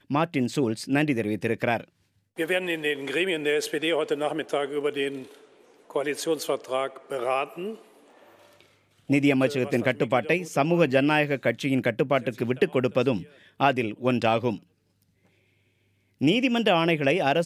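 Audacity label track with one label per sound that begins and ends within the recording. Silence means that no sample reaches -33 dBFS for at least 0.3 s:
2.390000	5.230000	sound
5.900000	7.750000	sound
9.100000	13.230000	sound
13.600000	14.560000	sound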